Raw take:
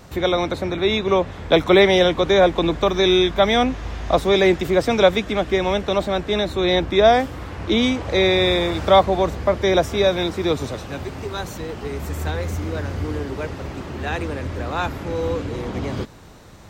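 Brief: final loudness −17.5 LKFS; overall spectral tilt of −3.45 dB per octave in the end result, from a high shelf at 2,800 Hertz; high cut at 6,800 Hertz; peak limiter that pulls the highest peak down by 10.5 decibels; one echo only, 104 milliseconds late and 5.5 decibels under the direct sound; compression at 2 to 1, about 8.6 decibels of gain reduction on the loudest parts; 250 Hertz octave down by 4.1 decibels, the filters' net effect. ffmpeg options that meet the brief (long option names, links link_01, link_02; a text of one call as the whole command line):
ffmpeg -i in.wav -af "lowpass=6800,equalizer=frequency=250:width_type=o:gain=-7,highshelf=frequency=2800:gain=5,acompressor=threshold=-25dB:ratio=2,alimiter=limit=-19.5dB:level=0:latency=1,aecho=1:1:104:0.531,volume=10.5dB" out.wav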